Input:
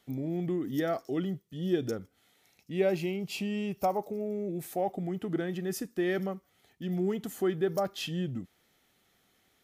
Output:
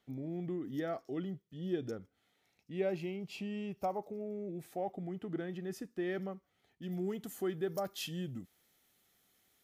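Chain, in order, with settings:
high-shelf EQ 6,200 Hz −10 dB, from 0:06.83 +4 dB, from 0:07.84 +10.5 dB
level −7 dB

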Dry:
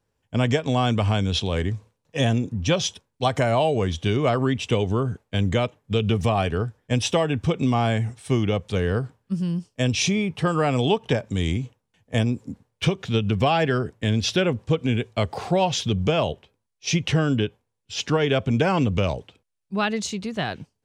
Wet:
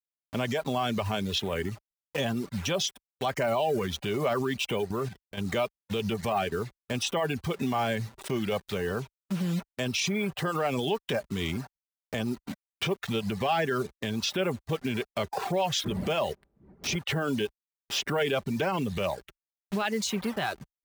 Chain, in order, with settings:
hold until the input has moved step −35 dBFS
camcorder AGC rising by 5.8 dB per second
0:15.84–0:16.95: wind on the microphone 230 Hz −32 dBFS
comb filter 5.1 ms, depth 31%
reverb reduction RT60 0.61 s
brickwall limiter −19.5 dBFS, peak gain reduction 11 dB
low-shelf EQ 370 Hz −2.5 dB
0:04.86–0:05.41: output level in coarse steps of 10 dB
high-pass filter 51 Hz
bass and treble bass −5 dB, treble −3 dB
level +2 dB

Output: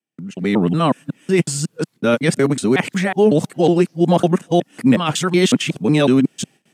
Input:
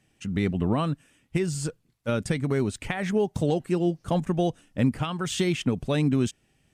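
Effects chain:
reversed piece by piece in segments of 184 ms
noise gate with hold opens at −55 dBFS
high-pass filter 160 Hz 24 dB per octave
automatic gain control gain up to 12 dB

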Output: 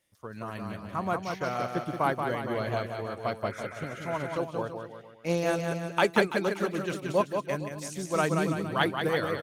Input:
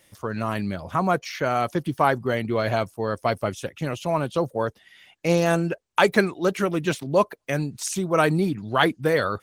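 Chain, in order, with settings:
bouncing-ball delay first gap 180 ms, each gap 0.85×, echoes 5
healed spectral selection 0:03.54–0:04.35, 1,200–2,600 Hz before
expander for the loud parts 1.5 to 1, over −37 dBFS
level −5 dB

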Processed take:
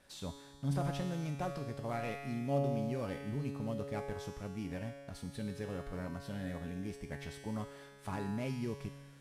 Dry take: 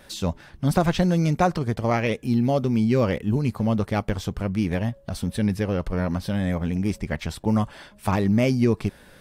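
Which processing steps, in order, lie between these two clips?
variable-slope delta modulation 64 kbit/s
in parallel at 0 dB: brickwall limiter −15 dBFS, peak gain reduction 8 dB
on the sum: tuned comb filter 140 Hz, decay 1.8 s, mix 90%
level −4 dB

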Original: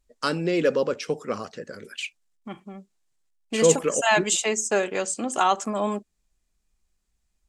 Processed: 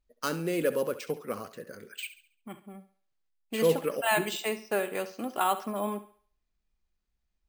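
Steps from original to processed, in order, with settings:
bad sample-rate conversion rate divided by 4×, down filtered, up hold
on a send: feedback echo with a high-pass in the loop 69 ms, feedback 40%, high-pass 300 Hz, level −13.5 dB
on the sum: level −6 dB

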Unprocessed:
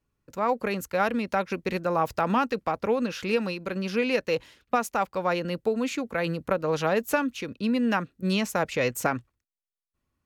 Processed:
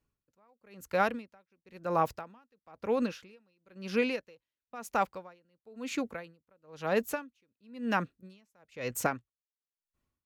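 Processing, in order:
tremolo with a sine in dB 1 Hz, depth 39 dB
level −2 dB

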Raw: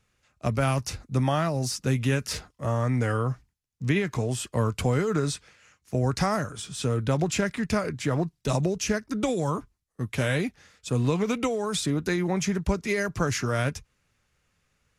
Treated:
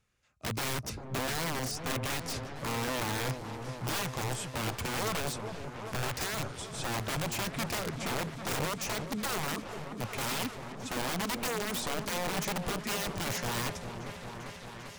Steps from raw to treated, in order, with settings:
wrap-around overflow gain 22 dB
on a send: echo whose low-pass opens from repeat to repeat 397 ms, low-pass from 750 Hz, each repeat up 1 octave, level −6 dB
on the sum: level −6 dB

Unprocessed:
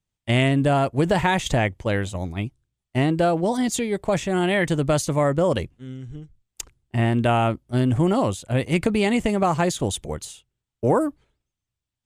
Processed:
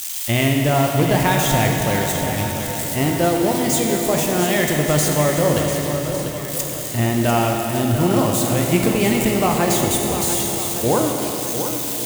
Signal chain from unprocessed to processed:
spike at every zero crossing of −18 dBFS
feedback echo with a long and a short gap by turns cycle 1,157 ms, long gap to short 1.5 to 1, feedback 36%, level −9.5 dB
on a send at −1 dB: convolution reverb RT60 3.5 s, pre-delay 14 ms

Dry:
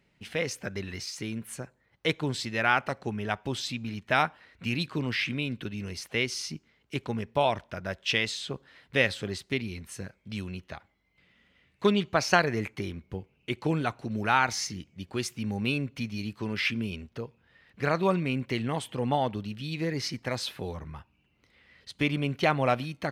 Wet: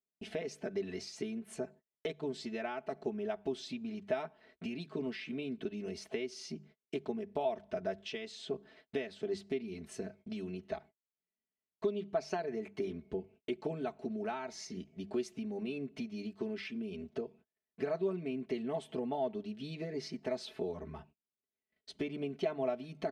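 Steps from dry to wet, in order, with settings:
Bessel low-pass filter 7,100 Hz, order 2
mains-hum notches 50/100/150/200 Hz
noise gate −54 dBFS, range −35 dB
parametric band 1,000 Hz −4.5 dB 2.1 octaves
comb filter 4.6 ms, depth 82%
downward compressor 6 to 1, threshold −37 dBFS, peak gain reduction 19.5 dB
hollow resonant body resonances 370/640 Hz, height 16 dB, ringing for 25 ms
level −6.5 dB

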